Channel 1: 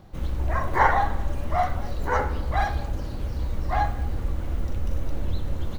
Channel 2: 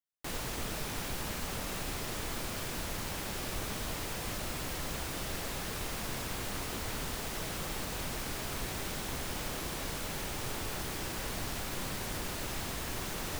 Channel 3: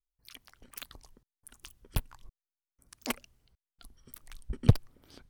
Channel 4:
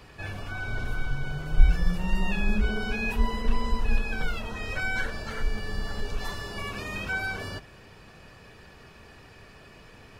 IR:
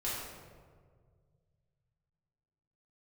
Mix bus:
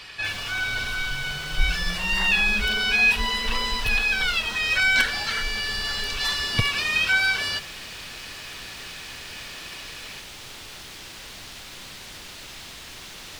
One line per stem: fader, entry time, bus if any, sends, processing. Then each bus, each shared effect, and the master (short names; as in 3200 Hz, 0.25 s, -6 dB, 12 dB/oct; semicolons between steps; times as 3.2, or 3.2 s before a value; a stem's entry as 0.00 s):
-15.5 dB, 1.40 s, no send, tape flanging out of phase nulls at 0.56 Hz, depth 2.2 ms
-9.0 dB, 0.00 s, no send, dry
-5.0 dB, 1.90 s, no send, dry
-0.5 dB, 0.00 s, no send, tilt shelf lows -5.5 dB, about 860 Hz; notch 6700 Hz, Q 15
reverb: off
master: bell 3600 Hz +13 dB 2.4 oct